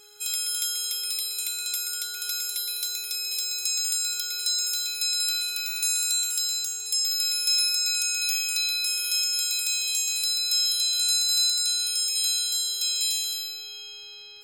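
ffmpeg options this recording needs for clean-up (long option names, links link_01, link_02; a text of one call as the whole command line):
ffmpeg -i in.wav -af "adeclick=threshold=4,bandreject=frequency=416:width_type=h:width=4,bandreject=frequency=832:width_type=h:width=4,bandreject=frequency=1248:width_type=h:width=4,bandreject=frequency=1664:width_type=h:width=4,bandreject=frequency=2080:width_type=h:width=4" out.wav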